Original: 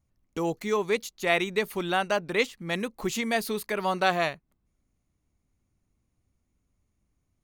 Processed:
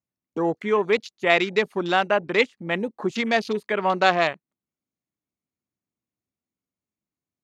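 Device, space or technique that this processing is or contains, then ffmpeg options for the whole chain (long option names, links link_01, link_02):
over-cleaned archive recording: -af "highpass=180,lowpass=7600,afwtdn=0.0126,volume=5.5dB"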